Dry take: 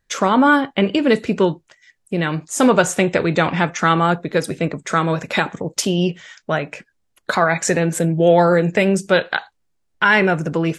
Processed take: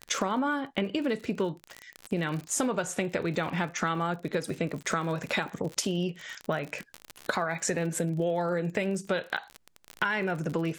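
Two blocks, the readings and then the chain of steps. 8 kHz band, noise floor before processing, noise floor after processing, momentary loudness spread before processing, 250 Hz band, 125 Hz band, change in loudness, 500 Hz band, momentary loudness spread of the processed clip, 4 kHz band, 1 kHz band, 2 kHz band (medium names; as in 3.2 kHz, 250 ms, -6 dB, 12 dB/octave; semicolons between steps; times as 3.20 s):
-7.5 dB, -68 dBFS, -63 dBFS, 10 LU, -12.5 dB, -11.5 dB, -13.0 dB, -13.5 dB, 6 LU, -10.5 dB, -13.5 dB, -13.0 dB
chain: crackle 53 per s -26 dBFS; compression 6:1, threshold -27 dBFS, peak gain reduction 17 dB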